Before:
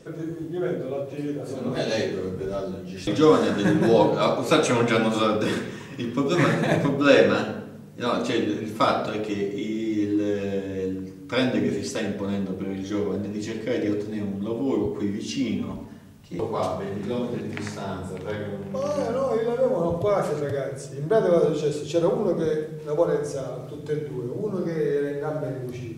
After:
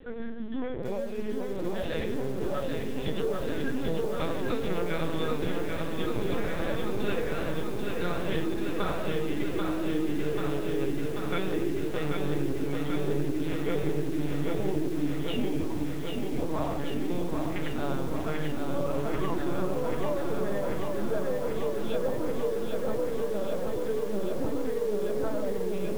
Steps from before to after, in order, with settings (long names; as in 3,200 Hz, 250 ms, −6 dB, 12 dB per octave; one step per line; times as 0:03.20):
hum removal 54.83 Hz, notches 5
downward compressor 16 to 1, threshold −27 dBFS, peak gain reduction 17 dB
phase-vocoder pitch shift with formants kept +6.5 semitones
linear-prediction vocoder at 8 kHz pitch kept
feedback echo at a low word length 788 ms, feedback 80%, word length 8 bits, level −4 dB